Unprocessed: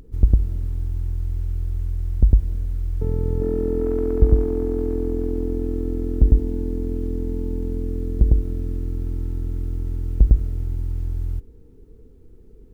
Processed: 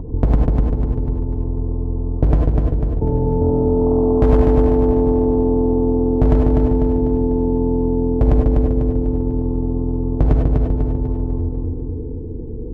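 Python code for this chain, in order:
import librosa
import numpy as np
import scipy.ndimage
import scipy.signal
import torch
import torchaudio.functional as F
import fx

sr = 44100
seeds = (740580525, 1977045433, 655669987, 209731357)

p1 = scipy.signal.sosfilt(scipy.signal.ellip(4, 1.0, 50, 990.0, 'lowpass', fs=sr, output='sos'), x)
p2 = fx.notch_comb(p1, sr, f0_hz=200.0)
p3 = np.clip(10.0 ** (11.5 / 20.0) * p2, -1.0, 1.0) / 10.0 ** (11.5 / 20.0)
p4 = fx.low_shelf(p3, sr, hz=340.0, db=10.5)
p5 = p4 + fx.echo_feedback(p4, sr, ms=248, feedback_pct=49, wet_db=-4, dry=0)
p6 = fx.rev_gated(p5, sr, seeds[0], gate_ms=120, shape='rising', drr_db=1.0)
p7 = fx.spectral_comp(p6, sr, ratio=2.0)
y = p7 * 10.0 ** (-6.0 / 20.0)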